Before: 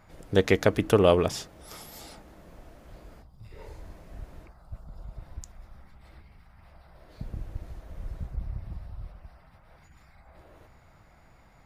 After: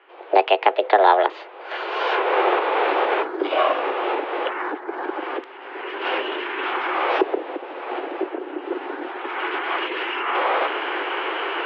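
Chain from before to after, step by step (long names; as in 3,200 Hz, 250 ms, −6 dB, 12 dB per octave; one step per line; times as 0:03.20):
camcorder AGC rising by 27 dB per second
formants moved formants +4 semitones
single-sideband voice off tune +190 Hz 180–3,200 Hz
level +5 dB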